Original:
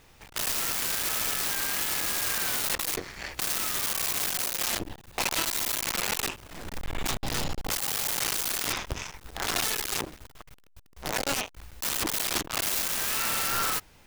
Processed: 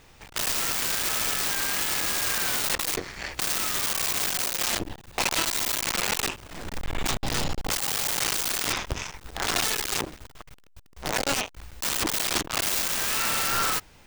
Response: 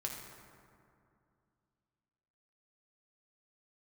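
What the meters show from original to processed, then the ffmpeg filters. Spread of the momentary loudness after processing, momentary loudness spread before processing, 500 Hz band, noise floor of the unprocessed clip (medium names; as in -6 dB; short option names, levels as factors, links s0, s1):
8 LU, 8 LU, +3.0 dB, -56 dBFS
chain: -af "equalizer=f=12000:t=o:w=0.21:g=-10.5,volume=1.41"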